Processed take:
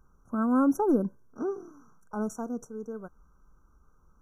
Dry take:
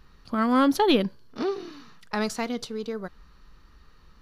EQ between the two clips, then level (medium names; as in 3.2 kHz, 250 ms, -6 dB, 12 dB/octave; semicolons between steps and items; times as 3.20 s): dynamic bell 250 Hz, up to +6 dB, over -33 dBFS, Q 0.83; brick-wall FIR band-stop 1.6–5.6 kHz; -7.5 dB